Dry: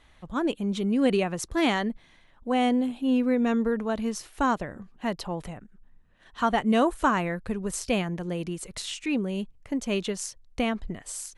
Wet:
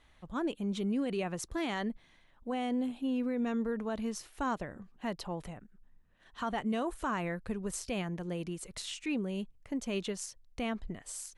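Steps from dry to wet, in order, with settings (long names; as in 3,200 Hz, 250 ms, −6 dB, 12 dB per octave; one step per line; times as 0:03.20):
brickwall limiter −19.5 dBFS, peak gain reduction 9 dB
level −6 dB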